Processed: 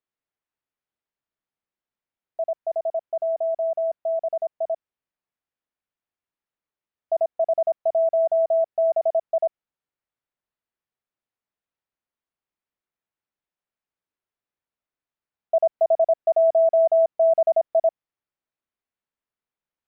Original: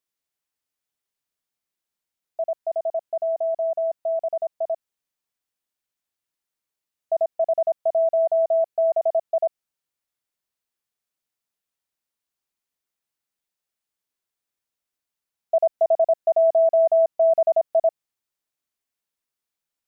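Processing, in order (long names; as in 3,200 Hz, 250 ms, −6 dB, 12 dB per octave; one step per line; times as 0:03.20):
Bessel low-pass filter 2,000 Hz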